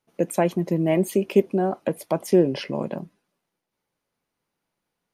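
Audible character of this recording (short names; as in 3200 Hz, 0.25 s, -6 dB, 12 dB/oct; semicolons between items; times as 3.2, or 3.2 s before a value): noise floor -82 dBFS; spectral tilt -6.0 dB/oct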